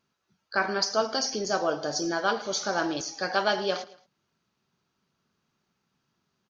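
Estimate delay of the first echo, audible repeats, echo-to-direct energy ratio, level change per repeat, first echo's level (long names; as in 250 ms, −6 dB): 111 ms, 2, −18.5 dB, −7.0 dB, −19.5 dB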